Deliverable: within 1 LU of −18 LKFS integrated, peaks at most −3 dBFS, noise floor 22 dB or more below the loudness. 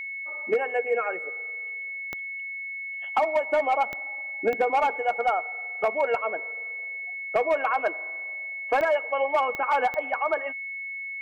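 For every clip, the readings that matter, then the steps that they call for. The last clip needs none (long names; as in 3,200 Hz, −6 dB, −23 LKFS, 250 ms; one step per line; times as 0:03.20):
number of clicks 6; interfering tone 2,200 Hz; level of the tone −32 dBFS; integrated loudness −27.0 LKFS; sample peak −13.5 dBFS; target loudness −18.0 LKFS
→ click removal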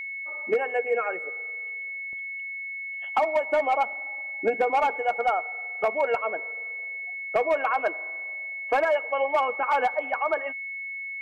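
number of clicks 0; interfering tone 2,200 Hz; level of the tone −32 dBFS
→ notch filter 2,200 Hz, Q 30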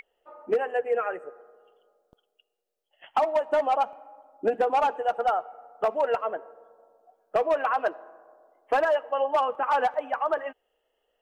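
interfering tone none found; integrated loudness −26.5 LKFS; sample peak −14.5 dBFS; target loudness −18.0 LKFS
→ level +8.5 dB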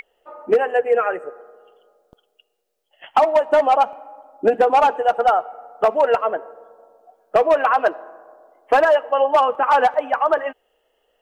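integrated loudness −18.0 LKFS; sample peak −6.0 dBFS; background noise floor −69 dBFS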